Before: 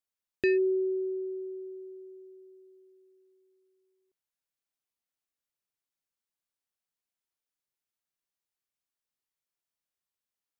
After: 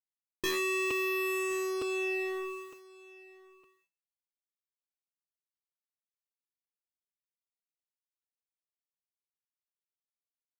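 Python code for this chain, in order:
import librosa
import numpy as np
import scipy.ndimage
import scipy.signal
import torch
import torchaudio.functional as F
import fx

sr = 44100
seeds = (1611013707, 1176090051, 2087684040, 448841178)

y = fx.fuzz(x, sr, gain_db=55.0, gate_db=-55.0)
y = fx.resonator_bank(y, sr, root=45, chord='fifth', decay_s=0.28)
y = y + 10.0 ** (-20.5 / 20.0) * np.pad(y, (int(1074 * sr / 1000.0), 0))[:len(y)]
y = fx.buffer_crackle(y, sr, first_s=0.9, period_s=0.91, block=256, kind='repeat')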